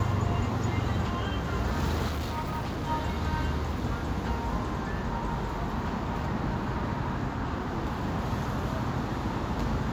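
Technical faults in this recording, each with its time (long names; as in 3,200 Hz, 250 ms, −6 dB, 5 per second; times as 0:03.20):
0:02.06–0:02.90: clipping −28 dBFS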